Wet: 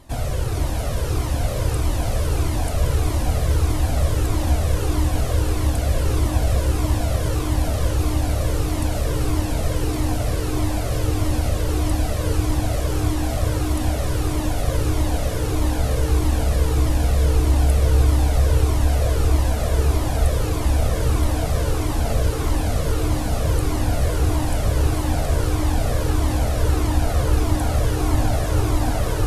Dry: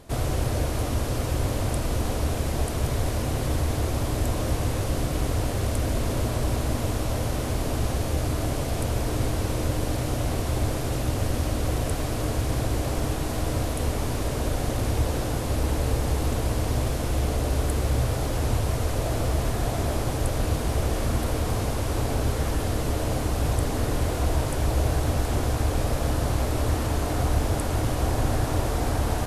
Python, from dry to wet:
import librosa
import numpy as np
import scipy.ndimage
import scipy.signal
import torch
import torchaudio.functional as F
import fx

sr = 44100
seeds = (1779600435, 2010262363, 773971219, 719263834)

y = fx.echo_diffused(x, sr, ms=480, feedback_pct=74, wet_db=-4)
y = fx.comb_cascade(y, sr, direction='falling', hz=1.6)
y = F.gain(torch.from_numpy(y), 4.5).numpy()